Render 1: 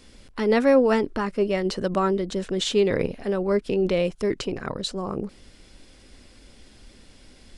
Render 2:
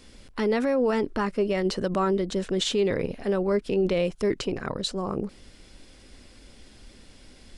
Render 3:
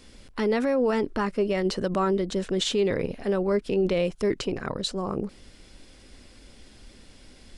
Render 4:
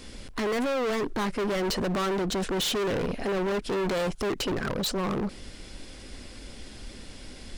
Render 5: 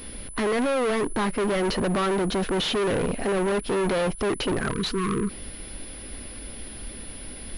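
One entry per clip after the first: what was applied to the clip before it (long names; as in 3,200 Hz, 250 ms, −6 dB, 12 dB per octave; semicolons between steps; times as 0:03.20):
brickwall limiter −16 dBFS, peak gain reduction 8.5 dB
no processing that can be heard
hard clipping −33 dBFS, distortion −4 dB; level +7 dB
time-frequency box erased 0:04.71–0:05.30, 480–960 Hz; switching amplifier with a slow clock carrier 10,000 Hz; level +3.5 dB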